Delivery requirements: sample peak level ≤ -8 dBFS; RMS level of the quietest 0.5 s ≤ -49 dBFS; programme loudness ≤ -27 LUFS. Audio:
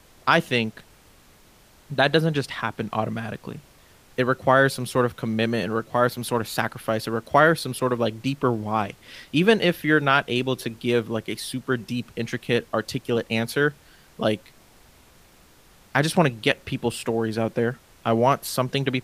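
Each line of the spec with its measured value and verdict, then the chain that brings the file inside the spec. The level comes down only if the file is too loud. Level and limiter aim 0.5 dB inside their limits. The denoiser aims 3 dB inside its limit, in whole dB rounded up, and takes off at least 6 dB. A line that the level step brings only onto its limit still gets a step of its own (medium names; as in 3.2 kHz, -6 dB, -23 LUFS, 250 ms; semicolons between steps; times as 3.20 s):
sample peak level -4.0 dBFS: fail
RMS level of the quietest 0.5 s -54 dBFS: pass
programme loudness -23.5 LUFS: fail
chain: trim -4 dB; peak limiter -8.5 dBFS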